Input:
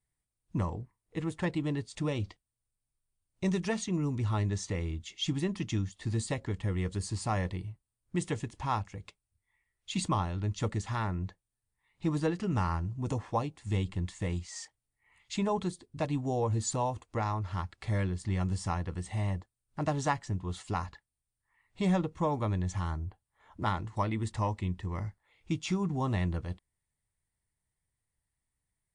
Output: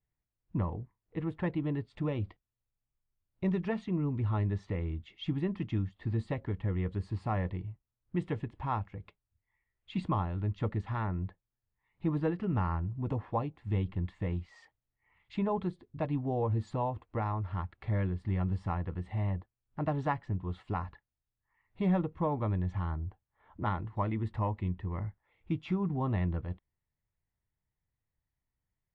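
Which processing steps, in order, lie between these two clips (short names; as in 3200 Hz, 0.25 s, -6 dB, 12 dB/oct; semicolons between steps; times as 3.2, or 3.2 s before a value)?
air absorption 460 m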